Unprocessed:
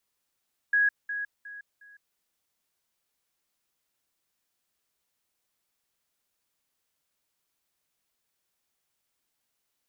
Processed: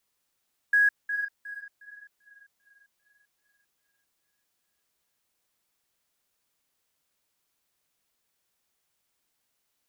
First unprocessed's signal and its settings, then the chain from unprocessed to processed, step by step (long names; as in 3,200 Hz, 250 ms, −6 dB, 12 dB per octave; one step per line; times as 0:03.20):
level staircase 1,660 Hz −19.5 dBFS, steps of −10 dB, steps 4, 0.16 s 0.20 s
in parallel at −10.5 dB: floating-point word with a short mantissa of 2 bits
on the sum: tape delay 394 ms, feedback 79%, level −12 dB, low-pass 1,400 Hz